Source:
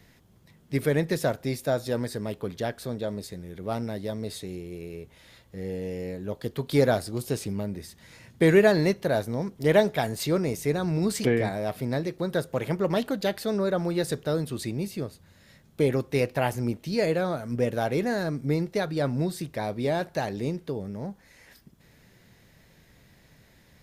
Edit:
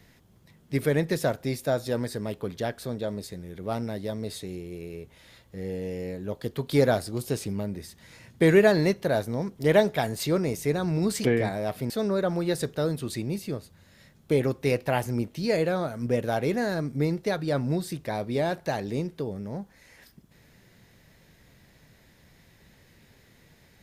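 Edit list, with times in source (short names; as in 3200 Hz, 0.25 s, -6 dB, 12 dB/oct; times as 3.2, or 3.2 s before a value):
11.9–13.39 cut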